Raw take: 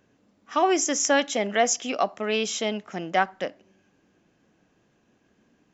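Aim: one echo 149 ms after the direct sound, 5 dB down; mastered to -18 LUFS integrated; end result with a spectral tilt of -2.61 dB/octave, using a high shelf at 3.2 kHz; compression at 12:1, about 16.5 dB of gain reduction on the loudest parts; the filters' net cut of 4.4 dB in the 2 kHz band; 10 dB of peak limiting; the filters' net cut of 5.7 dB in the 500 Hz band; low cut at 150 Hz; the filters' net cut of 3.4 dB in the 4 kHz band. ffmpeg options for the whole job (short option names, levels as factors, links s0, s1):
-af "highpass=150,equalizer=f=500:t=o:g=-7.5,equalizer=f=2000:t=o:g=-5,highshelf=f=3200:g=4.5,equalizer=f=4000:t=o:g=-7,acompressor=threshold=0.0141:ratio=12,alimiter=level_in=2.82:limit=0.0631:level=0:latency=1,volume=0.355,aecho=1:1:149:0.562,volume=15.8"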